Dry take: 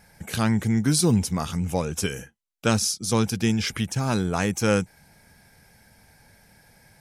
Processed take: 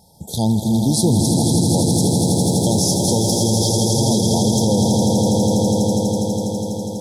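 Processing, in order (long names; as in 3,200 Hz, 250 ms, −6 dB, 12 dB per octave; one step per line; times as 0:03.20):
high-pass filter 57 Hz 12 dB per octave
echo that builds up and dies away 82 ms, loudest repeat 8, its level −7 dB
0:01.87–0:03.68: centre clipping without the shift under −39.5 dBFS
linear-phase brick-wall band-stop 970–3,200 Hz
boost into a limiter +11 dB
level −6 dB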